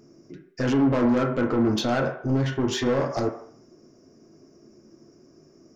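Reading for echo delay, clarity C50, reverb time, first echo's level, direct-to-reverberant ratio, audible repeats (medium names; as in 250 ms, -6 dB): no echo, 7.5 dB, 0.60 s, no echo, 2.0 dB, no echo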